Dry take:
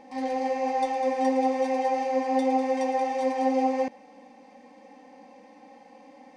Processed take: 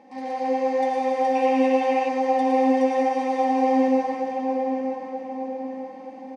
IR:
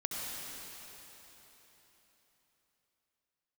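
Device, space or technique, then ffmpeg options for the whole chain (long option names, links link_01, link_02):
swimming-pool hall: -filter_complex "[1:a]atrim=start_sample=2205[link_01];[0:a][link_01]afir=irnorm=-1:irlink=0,highpass=91,highshelf=frequency=4600:gain=-7,asettb=1/sr,asplit=3[link_02][link_03][link_04];[link_02]atrim=end=1.354[link_05];[link_03]atrim=start=1.35:end=2.09,asetpts=PTS-STARTPTS,afade=type=in:duration=0.004:curve=qsin,afade=type=out:start_time=0.736:duration=0.004:curve=qsin,equalizer=frequency=2700:width=3.6:gain=11.5[link_06];[link_04]atrim=start=2.086[link_07];[link_05][link_06]acrossfade=duration=0.004:curve1=hsin:curve2=qsin[link_08];[link_08][link_07]acrossfade=duration=0.004:curve1=qsin:curve2=hsin,asplit=2[link_09][link_10];[link_10]adelay=929,lowpass=frequency=1800:poles=1,volume=-6.5dB,asplit=2[link_11][link_12];[link_12]adelay=929,lowpass=frequency=1800:poles=1,volume=0.48,asplit=2[link_13][link_14];[link_14]adelay=929,lowpass=frequency=1800:poles=1,volume=0.48,asplit=2[link_15][link_16];[link_16]adelay=929,lowpass=frequency=1800:poles=1,volume=0.48,asplit=2[link_17][link_18];[link_18]adelay=929,lowpass=frequency=1800:poles=1,volume=0.48,asplit=2[link_19][link_20];[link_20]adelay=929,lowpass=frequency=1800:poles=1,volume=0.48[link_21];[link_09][link_11][link_13][link_15][link_17][link_19][link_21]amix=inputs=7:normalize=0"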